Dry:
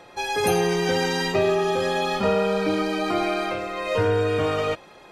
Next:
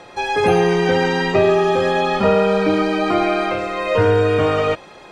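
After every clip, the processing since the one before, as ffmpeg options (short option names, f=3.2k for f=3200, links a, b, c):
-filter_complex "[0:a]acrossover=split=3100[a][b];[b]acompressor=threshold=-45dB:ratio=4:attack=1:release=60[c];[a][c]amix=inputs=2:normalize=0,lowpass=f=10k:w=0.5412,lowpass=f=10k:w=1.3066,volume=6.5dB"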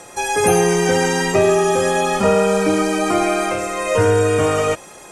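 -af "aexciter=amount=10.9:drive=5:freq=6.1k"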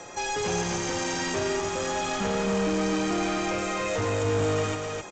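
-filter_complex "[0:a]acrossover=split=280|3000[a][b][c];[b]acompressor=threshold=-25dB:ratio=2[d];[a][d][c]amix=inputs=3:normalize=0,aresample=16000,asoftclip=type=tanh:threshold=-23.5dB,aresample=44100,aecho=1:1:261:0.631,volume=-2dB"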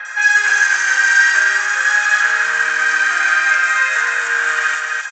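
-filter_complex "[0:a]acontrast=81,highpass=f=1.6k:t=q:w=13,acrossover=split=3500[a][b];[b]adelay=50[c];[a][c]amix=inputs=2:normalize=0,volume=2dB"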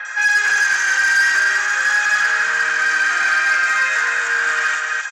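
-af "asoftclip=type=tanh:threshold=-10dB"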